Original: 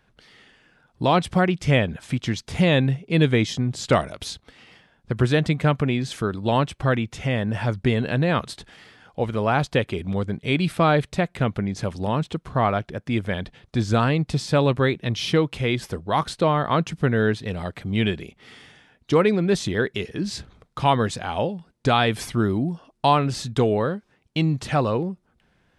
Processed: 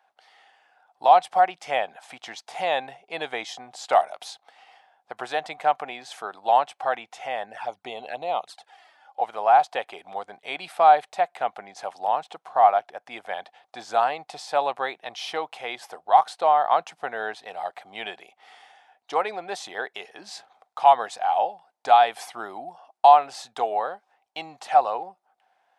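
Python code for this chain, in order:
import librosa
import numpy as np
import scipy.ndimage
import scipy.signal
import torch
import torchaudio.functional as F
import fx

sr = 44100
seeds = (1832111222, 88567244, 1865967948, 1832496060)

y = fx.env_flanger(x, sr, rest_ms=3.9, full_db=-19.0, at=(7.45, 9.2), fade=0.02)
y = fx.highpass_res(y, sr, hz=760.0, q=8.3)
y = y * librosa.db_to_amplitude(-6.5)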